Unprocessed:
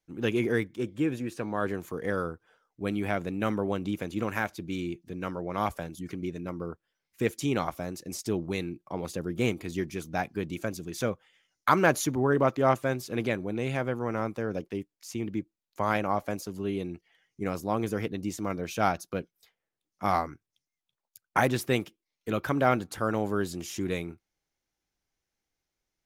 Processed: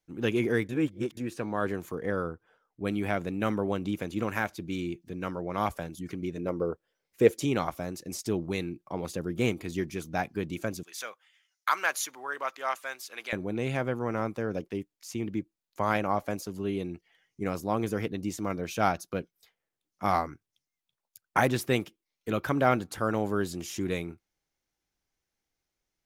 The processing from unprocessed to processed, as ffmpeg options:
-filter_complex "[0:a]asettb=1/sr,asplit=3[a][b][c];[a]atrim=end=1.954[d];[b]atrim=start=1.95:end=2.85,asetpts=PTS-STARTPTS,afade=t=in:d=0.004:c=qsin,afade=t=out:st=0.896:d=0.004:c=qsin,highshelf=f=2.9k:g=-8.5[e];[c]atrim=start=2.846[f];[d][e]acrossfade=d=0.004:c1=hsin:c2=qsin[g];[g][f]acrossfade=d=0.004:c1=qsin:c2=hsin,asettb=1/sr,asplit=3[h][i][j];[h]atrim=end=6.374[k];[i]atrim=start=6.37:end=7.45,asetpts=PTS-STARTPTS,afade=t=in:d=0.004:c=qsin,afade=t=out:st=1.076:d=0.004:c=qsin,equalizer=f=490:t=o:w=1:g=10[l];[j]atrim=start=7.446[m];[k][l]acrossfade=d=0.004:c1=hsin:c2=qsin[n];[n][m]acrossfade=d=0.004:c1=qsin:c2=hsin,asettb=1/sr,asplit=3[o][p][q];[o]atrim=end=10.834[r];[p]atrim=start=10.83:end=13.33,asetpts=PTS-STARTPTS,afade=t=in:d=0.004:c=qsin,afade=t=out:st=2.496:d=0.004:c=qsin,highpass=1.2k[s];[q]atrim=start=13.326[t];[r][s]acrossfade=d=0.004:c1=hsin:c2=qsin[u];[u][t]acrossfade=d=0.004:c1=qsin:c2=hsin,asplit=3[v][w][x];[v]atrim=end=0.692[y];[w]atrim=start=0.688:end=1.172,asetpts=PTS-STARTPTS,areverse[z];[x]atrim=start=1.168[aa];[y][z]acrossfade=d=0.004:c1=hsin:c2=hsin[ab];[ab][aa]acrossfade=d=0.004:c1=hsin:c2=hsin"

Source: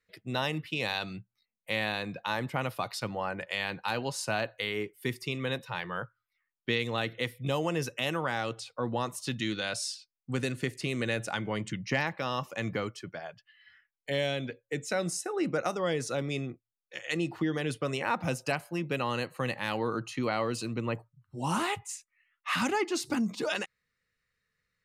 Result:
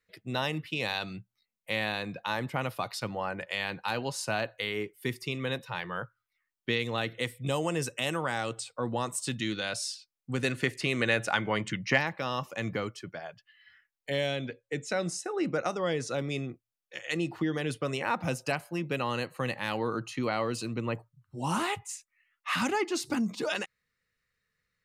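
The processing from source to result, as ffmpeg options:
-filter_complex "[0:a]asettb=1/sr,asplit=3[a][b][c];[a]atrim=end=7.144[d];[b]atrim=start=7.14:end=9.37,asetpts=PTS-STARTPTS,afade=t=in:d=0.004:c=qsin,afade=t=out:st=2.226:d=0.004:c=qsin,equalizer=f=8.1k:t=o:w=0.29:g=13[e];[c]atrim=start=9.366[f];[d][e]acrossfade=d=0.004:c1=hsin:c2=qsin[g];[g][f]acrossfade=d=0.004:c1=qsin:c2=hsin,asettb=1/sr,asplit=3[h][i][j];[h]atrim=end=10.444[k];[i]atrim=start=10.44:end=11.98,asetpts=PTS-STARTPTS,afade=t=in:d=0.004:c=qsin,afade=t=out:st=1.536:d=0.004:c=qsin,equalizer=f=1.5k:w=0.38:g=7[l];[j]atrim=start=11.976[m];[k][l]acrossfade=d=0.004:c1=hsin:c2=qsin[n];[n][m]acrossfade=d=0.004:c1=qsin:c2=hsin,asettb=1/sr,asplit=3[o][p][q];[o]atrim=end=14.364[r];[p]atrim=start=14.36:end=16.14,asetpts=PTS-STARTPTS,afade=t=in:d=0.004:c=qsin,afade=t=out:st=1.776:d=0.004:c=qsin,lowpass=8.4k[s];[q]atrim=start=16.136[t];[r][s]acrossfade=d=0.004:c1=hsin:c2=qsin[u];[u][t]acrossfade=d=0.004:c1=qsin:c2=hsin"

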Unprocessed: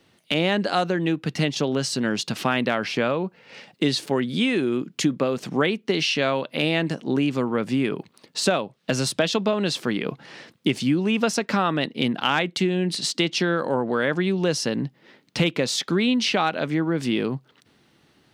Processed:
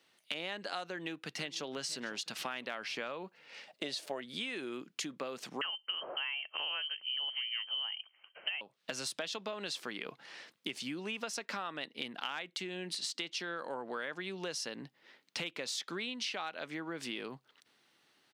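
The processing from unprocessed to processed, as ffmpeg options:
-filter_complex "[0:a]asplit=2[a][b];[b]afade=t=in:st=0.9:d=0.01,afade=t=out:st=1.68:d=0.01,aecho=0:1:500|1000|1500|2000:0.149624|0.0673306|0.0302988|0.0136344[c];[a][c]amix=inputs=2:normalize=0,asettb=1/sr,asplit=3[d][e][f];[d]atrim=end=3.684[g];[e]atrim=start=3.68:end=4.21,asetpts=PTS-STARTPTS,afade=t=in:d=0.004:c=qsin,afade=t=out:st=0.526:d=0.004:c=qsin,equalizer=f=620:w=3.4:g=15[h];[f]atrim=start=4.206[i];[g][h]acrossfade=d=0.004:c1=hsin:c2=qsin[j];[j][i]acrossfade=d=0.004:c1=qsin:c2=hsin,asettb=1/sr,asplit=3[k][l][m];[k]atrim=end=5.614[n];[l]atrim=start=5.61:end=8.61,asetpts=PTS-STARTPTS,afade=t=in:d=0.004:c=qsin,afade=t=out:st=2.996:d=0.004:c=qsin,lowpass=f=2.8k:t=q:w=0.5098,lowpass=f=2.8k:t=q:w=0.6013,lowpass=f=2.8k:t=q:w=0.9,lowpass=f=2.8k:t=q:w=2.563,afreqshift=-3300[o];[m]atrim=start=8.606[p];[n][o]acrossfade=d=0.004:c1=hsin:c2=qsin[q];[q][p]acrossfade=d=0.004:c1=qsin:c2=hsin,highpass=f=1k:p=1,acompressor=threshold=-30dB:ratio=4,volume=-6dB"

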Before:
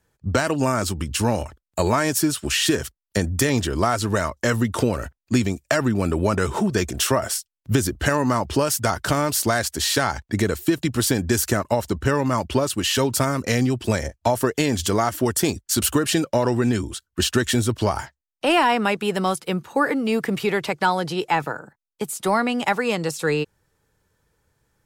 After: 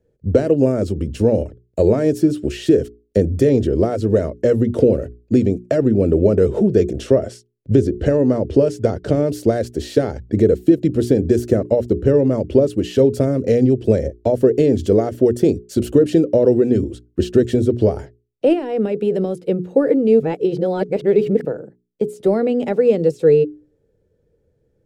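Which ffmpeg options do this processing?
-filter_complex "[0:a]asettb=1/sr,asplit=3[a][b][c];[a]atrim=end=7.004[d];[b]atrim=start=7:end=9.24,asetpts=PTS-STARTPTS,afade=t=in:d=0.004:c=qsin,afade=t=out:st=2.236:d=0.004:c=qsin,lowpass=8.5k[e];[c]atrim=start=9.236[f];[d][e]acrossfade=d=0.004:c1=hsin:c2=qsin[g];[g][f]acrossfade=d=0.004:c1=qsin:c2=hsin,asettb=1/sr,asplit=3[h][i][j];[h]atrim=end=18.534[k];[i]atrim=start=18.53:end=19.42,asetpts=PTS-STARTPTS,afade=t=in:d=0.004:c=qsin,afade=t=out:st=0.886:d=0.004:c=qsin,acompressor=threshold=-20dB:ratio=6:attack=3.2:release=140:knee=1:detection=peak[l];[j]atrim=start=19.416[m];[k][l]acrossfade=d=0.004:c1=hsin:c2=qsin[n];[n][m]acrossfade=d=0.004:c1=qsin:c2=hsin,asplit=3[o][p][q];[o]atrim=end=20.202[r];[p]atrim=start=20.198:end=21.452,asetpts=PTS-STARTPTS,areverse[s];[q]atrim=start=21.448[t];[r][s]acrossfade=d=0.004:c1=hsin:c2=hsin[u];[u][t]acrossfade=d=0.004:c1=hsin:c2=hsin,lowpass=f=3.4k:p=1,lowshelf=f=700:t=q:w=3:g=12.5,bandreject=f=60:t=h:w=6,bandreject=f=120:t=h:w=6,bandreject=f=180:t=h:w=6,bandreject=f=240:t=h:w=6,bandreject=f=300:t=h:w=6,bandreject=f=360:t=h:w=6,bandreject=f=420:t=h:w=6,volume=-8dB"

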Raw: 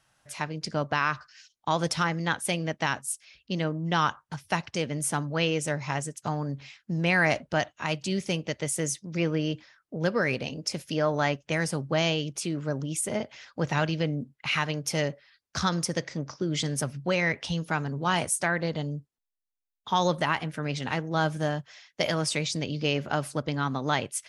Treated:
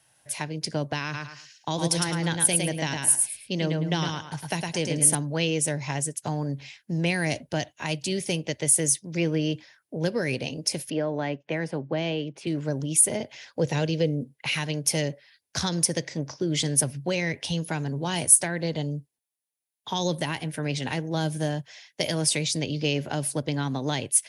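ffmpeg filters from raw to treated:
-filter_complex "[0:a]asettb=1/sr,asplit=3[a][b][c];[a]atrim=end=1.034[d];[b]atrim=start=1.03:end=5.15,asetpts=PTS-STARTPTS,afade=t=in:d=0.004:c=qsin,afade=t=out:st=4.116:d=0.004:c=qsin,aecho=1:1:108|216|324:0.631|0.145|0.0334,atrim=end_sample=181692[e];[c]atrim=start=5.146[f];[d][e]acrossfade=d=0.004:c1=hsin:c2=qsin[g];[g][f]acrossfade=d=0.004:c1=qsin:c2=hsin,asettb=1/sr,asplit=3[h][i][j];[h]atrim=end=10.904[k];[i]atrim=start=10.9:end=12.47,asetpts=PTS-STARTPTS,afade=t=in:d=0.004:c=qsin,afade=t=out:st=1.566:d=0.004:c=qsin,highpass=180,lowpass=2.2k[l];[j]atrim=start=12.466[m];[k][l]acrossfade=d=0.004:c1=hsin:c2=qsin[n];[n][m]acrossfade=d=0.004:c1=qsin:c2=hsin,asettb=1/sr,asplit=3[o][p][q];[o]atrim=end=13.534[r];[p]atrim=start=13.53:end=14.55,asetpts=PTS-STARTPTS,afade=t=in:d=0.004:c=qsin,afade=t=out:st=1.016:d=0.004:c=qsin,equalizer=f=490:t=o:w=0.43:g=9[s];[q]atrim=start=14.546[t];[r][s]acrossfade=d=0.004:c1=hsin:c2=qsin[u];[u][t]acrossfade=d=0.004:c1=qsin:c2=hsin,equalizer=f=200:t=o:w=0.33:g=-6,equalizer=f=1.25k:t=o:w=0.33:g=-12,equalizer=f=10k:t=o:w=0.33:g=12,acrossover=split=410|3000[v][w][x];[w]acompressor=threshold=-34dB:ratio=6[y];[v][y][x]amix=inputs=3:normalize=0,highpass=85,volume=3.5dB"

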